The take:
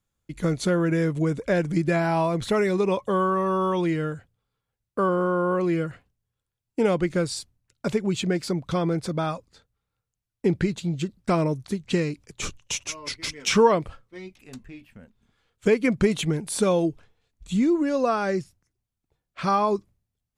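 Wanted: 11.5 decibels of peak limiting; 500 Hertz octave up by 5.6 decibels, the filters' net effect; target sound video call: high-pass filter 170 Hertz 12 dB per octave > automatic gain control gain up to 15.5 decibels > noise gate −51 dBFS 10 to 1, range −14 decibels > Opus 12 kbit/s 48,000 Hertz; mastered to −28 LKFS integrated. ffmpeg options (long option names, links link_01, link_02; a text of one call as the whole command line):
ffmpeg -i in.wav -af "equalizer=frequency=500:width_type=o:gain=7,alimiter=limit=-13.5dB:level=0:latency=1,highpass=170,dynaudnorm=maxgain=15.5dB,agate=range=-14dB:threshold=-51dB:ratio=10,volume=-7dB" -ar 48000 -c:a libopus -b:a 12k out.opus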